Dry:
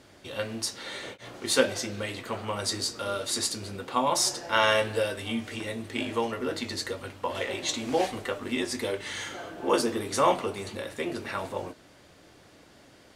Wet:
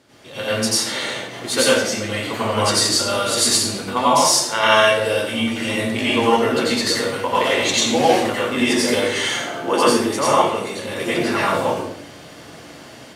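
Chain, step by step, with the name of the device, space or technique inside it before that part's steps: far laptop microphone (reverberation RT60 0.60 s, pre-delay 83 ms, DRR -7.5 dB; high-pass 100 Hz; level rider gain up to 9 dB); trim -1.5 dB

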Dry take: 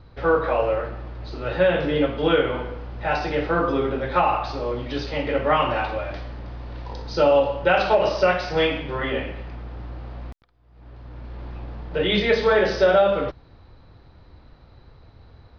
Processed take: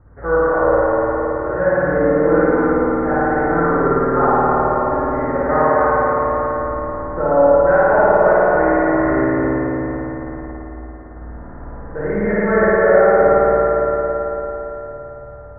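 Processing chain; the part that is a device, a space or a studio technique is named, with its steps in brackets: steep low-pass 1.9 kHz 72 dB/octave; dub delay into a spring reverb (filtered feedback delay 281 ms, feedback 60%, low-pass 4.9 kHz, level -4 dB; spring tank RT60 3.2 s, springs 53 ms, chirp 30 ms, DRR -8.5 dB); trim -3 dB

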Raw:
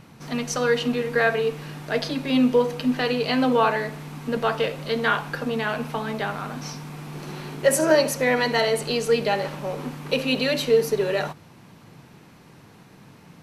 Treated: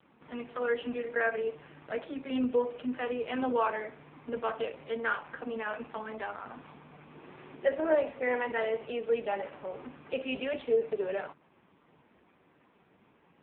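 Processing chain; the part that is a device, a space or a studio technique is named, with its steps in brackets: telephone (band-pass 270–3100 Hz; trim -7.5 dB; AMR-NB 5.15 kbps 8 kHz)

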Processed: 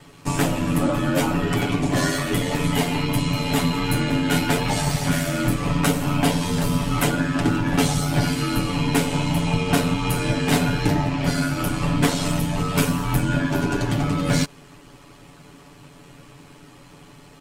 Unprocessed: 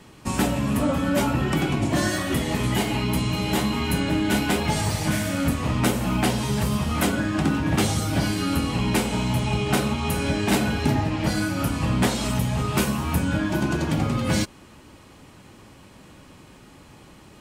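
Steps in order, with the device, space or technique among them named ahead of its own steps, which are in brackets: ring-modulated robot voice (ring modulator 44 Hz; comb 7 ms, depth 83%); trim +2.5 dB

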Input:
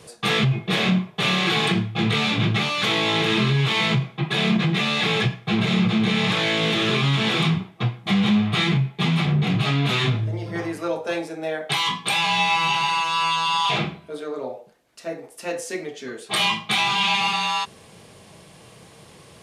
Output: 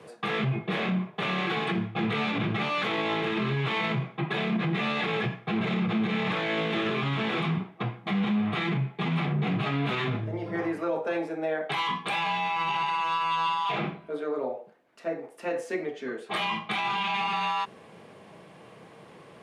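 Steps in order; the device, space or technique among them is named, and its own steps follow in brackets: DJ mixer with the lows and highs turned down (three-band isolator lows -16 dB, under 150 Hz, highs -16 dB, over 2.6 kHz; peak limiter -20 dBFS, peak gain reduction 8.5 dB)

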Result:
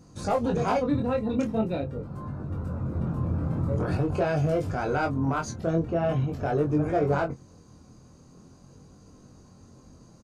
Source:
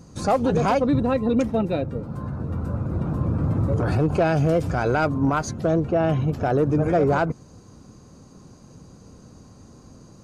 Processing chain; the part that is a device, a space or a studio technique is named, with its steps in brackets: double-tracked vocal (doubling 23 ms -12 dB; chorus 0.44 Hz, delay 20 ms, depth 4.4 ms); trim -2.5 dB

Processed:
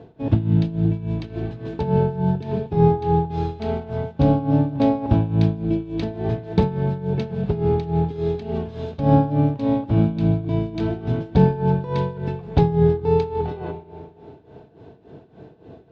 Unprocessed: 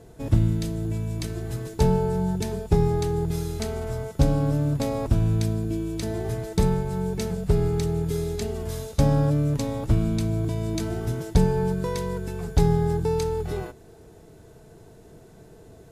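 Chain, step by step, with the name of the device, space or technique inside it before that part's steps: combo amplifier with spring reverb and tremolo (spring tank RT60 2.4 s, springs 36/42 ms, chirp 45 ms, DRR 9.5 dB; tremolo 3.5 Hz, depth 79%; cabinet simulation 90–3500 Hz, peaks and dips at 270 Hz +4 dB, 790 Hz +3 dB, 1.3 kHz -4 dB, 2 kHz -6 dB); trim +6.5 dB

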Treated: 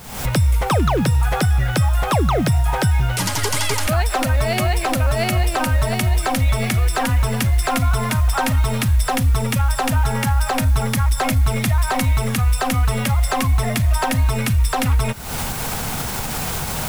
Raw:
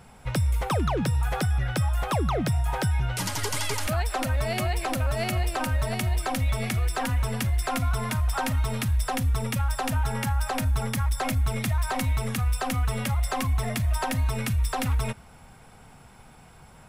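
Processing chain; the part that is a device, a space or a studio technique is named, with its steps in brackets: cheap recorder with automatic gain (white noise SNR 27 dB; recorder AGC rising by 69 dB/s); trim +8 dB

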